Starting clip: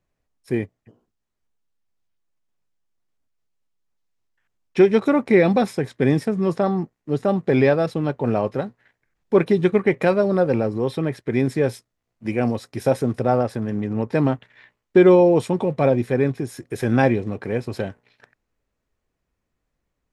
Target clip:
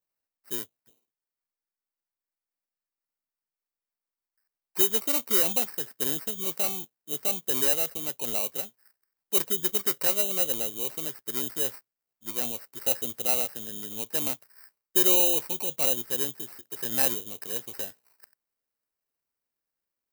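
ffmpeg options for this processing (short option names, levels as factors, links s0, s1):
-af "acrusher=samples=13:mix=1:aa=0.000001,aemphasis=mode=production:type=riaa,volume=0.224"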